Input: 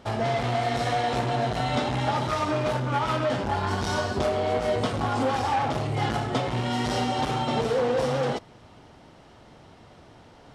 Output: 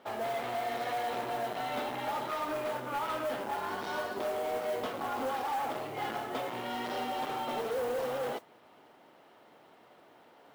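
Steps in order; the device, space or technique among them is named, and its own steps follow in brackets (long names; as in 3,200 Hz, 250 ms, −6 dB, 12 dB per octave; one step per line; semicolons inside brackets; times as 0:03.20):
carbon microphone (band-pass filter 340–3,300 Hz; soft clipping −22.5 dBFS, distortion −16 dB; noise that follows the level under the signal 20 dB)
level −5 dB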